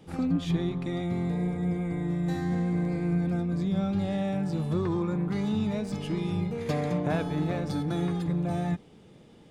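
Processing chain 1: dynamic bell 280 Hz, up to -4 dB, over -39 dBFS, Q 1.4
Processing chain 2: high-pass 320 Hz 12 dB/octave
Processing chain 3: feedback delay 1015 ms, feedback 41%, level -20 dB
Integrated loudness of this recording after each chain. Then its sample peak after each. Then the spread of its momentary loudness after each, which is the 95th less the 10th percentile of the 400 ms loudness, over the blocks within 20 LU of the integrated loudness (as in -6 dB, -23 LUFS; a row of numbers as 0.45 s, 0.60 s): -31.0 LUFS, -35.5 LUFS, -29.0 LUFS; -16.0 dBFS, -19.0 dBFS, -14.5 dBFS; 3 LU, 5 LU, 3 LU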